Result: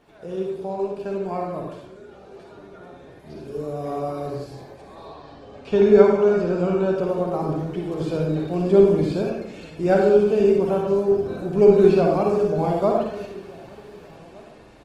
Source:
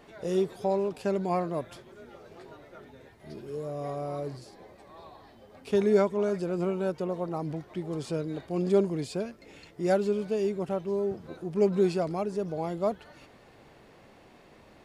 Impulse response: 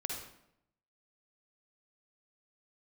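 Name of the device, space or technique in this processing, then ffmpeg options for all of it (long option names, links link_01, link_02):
speakerphone in a meeting room: -filter_complex "[0:a]acrossover=split=3800[link_01][link_02];[link_02]acompressor=threshold=-58dB:ratio=4:attack=1:release=60[link_03];[link_01][link_03]amix=inputs=2:normalize=0,asettb=1/sr,asplit=3[link_04][link_05][link_06];[link_04]atrim=end=5.054[link_07];[link_05]atrim=start=5.05:end=6.95,asetpts=PTS-STARTPTS,afade=type=in:duration=0.004:curve=qsin,afade=type=out:start_time=1.896:duration=0.004:curve=qsin,lowpass=frequency=7600:width=0.5412,lowpass=frequency=7600:width=1.3066[link_08];[link_06]atrim=start=6.946[link_09];[link_07][link_08]acrossfade=duration=0.004:curve1=hsin:curve2=qsin[link_10];[link_10][link_09]acrossfade=duration=0.004:curve1=qsin:curve2=hsin,bandreject=frequency=2000:width=10,asplit=2[link_11][link_12];[link_12]adelay=1516,volume=-22dB,highshelf=frequency=4000:gain=-34.1[link_13];[link_11][link_13]amix=inputs=2:normalize=0[link_14];[1:a]atrim=start_sample=2205[link_15];[link_14][link_15]afir=irnorm=-1:irlink=0,dynaudnorm=framelen=740:gausssize=9:maxgain=14dB,volume=-1dB" -ar 48000 -c:a libopus -b:a 20k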